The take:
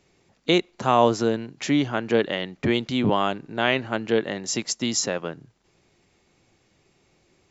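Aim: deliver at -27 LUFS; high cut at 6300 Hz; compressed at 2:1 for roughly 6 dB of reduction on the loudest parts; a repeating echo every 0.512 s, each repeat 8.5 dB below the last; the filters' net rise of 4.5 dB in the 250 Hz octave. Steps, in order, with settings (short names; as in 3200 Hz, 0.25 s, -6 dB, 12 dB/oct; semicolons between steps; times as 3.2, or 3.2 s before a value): LPF 6300 Hz; bell 250 Hz +5.5 dB; compressor 2:1, threshold -23 dBFS; feedback echo 0.512 s, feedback 38%, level -8.5 dB; gain -1 dB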